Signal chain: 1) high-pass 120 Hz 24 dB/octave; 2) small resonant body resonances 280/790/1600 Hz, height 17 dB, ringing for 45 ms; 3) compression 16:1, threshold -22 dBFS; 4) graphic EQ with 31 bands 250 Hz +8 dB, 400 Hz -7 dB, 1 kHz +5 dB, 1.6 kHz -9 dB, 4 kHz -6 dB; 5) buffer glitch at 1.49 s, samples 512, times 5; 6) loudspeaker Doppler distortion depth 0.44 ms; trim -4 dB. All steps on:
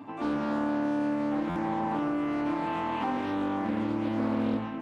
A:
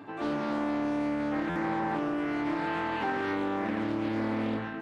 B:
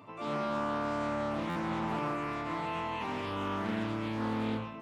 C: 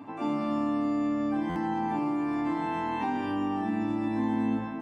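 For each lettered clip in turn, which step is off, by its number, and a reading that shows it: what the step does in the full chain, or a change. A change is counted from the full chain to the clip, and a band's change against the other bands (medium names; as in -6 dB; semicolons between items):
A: 4, momentary loudness spread change -1 LU; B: 2, 250 Hz band -7.0 dB; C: 6, 500 Hz band -2.0 dB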